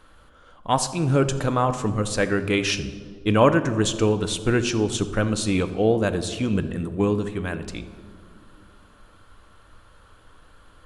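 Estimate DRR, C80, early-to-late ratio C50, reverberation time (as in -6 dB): 9.0 dB, 13.5 dB, 12.0 dB, 2.2 s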